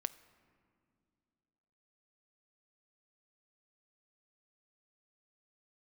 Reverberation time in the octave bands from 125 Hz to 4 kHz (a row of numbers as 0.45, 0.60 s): 2.7, 2.7, 2.7, 2.2, 1.8, 1.4 s